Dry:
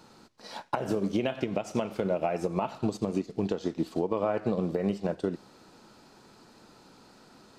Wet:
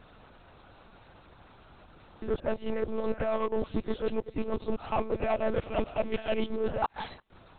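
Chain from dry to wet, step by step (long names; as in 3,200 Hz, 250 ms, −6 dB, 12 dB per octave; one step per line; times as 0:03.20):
played backwards from end to start
low-shelf EQ 200 Hz −9 dB
in parallel at −1 dB: hard clipping −29.5 dBFS, distortion −8 dB
on the sum: harmonic and percussive parts rebalanced harmonic −5 dB
one-pitch LPC vocoder at 8 kHz 220 Hz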